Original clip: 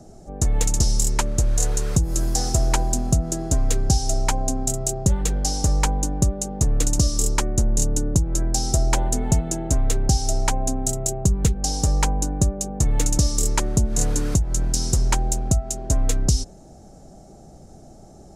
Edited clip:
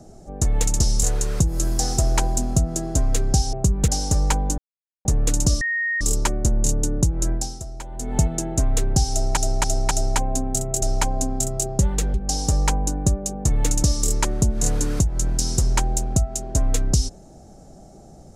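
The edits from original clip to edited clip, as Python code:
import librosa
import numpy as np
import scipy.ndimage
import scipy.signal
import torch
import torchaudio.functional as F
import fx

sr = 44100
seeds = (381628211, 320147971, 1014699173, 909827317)

y = fx.edit(x, sr, fx.cut(start_s=1.03, length_s=0.56),
    fx.swap(start_s=4.09, length_s=1.32, other_s=11.14, other_length_s=0.35),
    fx.silence(start_s=6.11, length_s=0.47),
    fx.insert_tone(at_s=7.14, length_s=0.4, hz=1860.0, db=-20.5),
    fx.fade_down_up(start_s=8.46, length_s=0.84, db=-15.0, fade_s=0.34, curve='qua'),
    fx.repeat(start_s=10.23, length_s=0.27, count=4), tone=tone)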